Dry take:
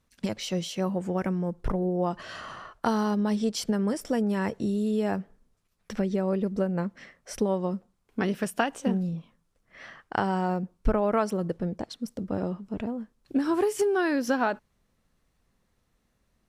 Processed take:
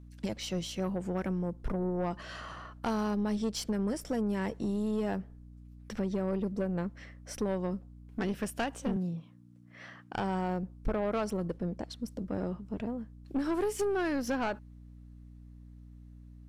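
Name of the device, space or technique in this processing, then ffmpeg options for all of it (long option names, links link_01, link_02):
valve amplifier with mains hum: -filter_complex "[0:a]aeval=exprs='(tanh(12.6*val(0)+0.3)-tanh(0.3))/12.6':channel_layout=same,aeval=exprs='val(0)+0.00501*(sin(2*PI*60*n/s)+sin(2*PI*2*60*n/s)/2+sin(2*PI*3*60*n/s)/3+sin(2*PI*4*60*n/s)/4+sin(2*PI*5*60*n/s)/5)':channel_layout=same,asettb=1/sr,asplit=3[link_01][link_02][link_03];[link_01]atrim=end=8.964[link_04];[link_02]atrim=start=8.96:end=10.15,asetpts=PTS-STARTPTS,afade=type=in:duration=0.004:curve=qsin,afade=type=out:start_time=1.186:duration=0.004:curve=qsin,highpass=frequency=120:width=0.5412,highpass=frequency=120:width=1.3066[link_05];[link_03]atrim=start=10.146[link_06];[link_04][link_05]acrossfade=duration=0.004:curve1=hsin:curve2=qsin[link_07];[link_07][link_06]acrossfade=duration=0.004:curve1=qsin:curve2=hsin,volume=-3dB"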